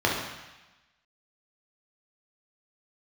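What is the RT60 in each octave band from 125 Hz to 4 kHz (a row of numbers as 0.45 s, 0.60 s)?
1.0 s, 1.0 s, 0.95 s, 1.1 s, 1.2 s, 1.2 s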